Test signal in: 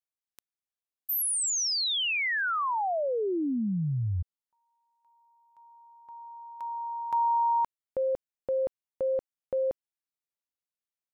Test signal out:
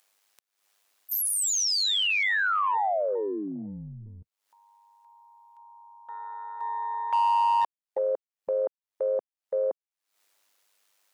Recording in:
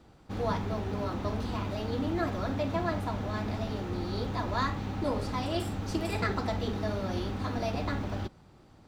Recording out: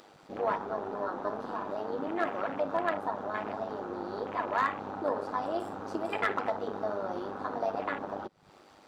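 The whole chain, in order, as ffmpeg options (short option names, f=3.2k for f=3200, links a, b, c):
-filter_complex "[0:a]afwtdn=0.01,highpass=460,highshelf=f=10k:g=-3.5,asplit=2[a][b];[b]acompressor=mode=upward:threshold=-32dB:ratio=2.5:attack=1.3:release=205:knee=2.83:detection=peak,volume=0.5dB[c];[a][c]amix=inputs=2:normalize=0,tremolo=f=100:d=0.621,asoftclip=type=hard:threshold=-18.5dB"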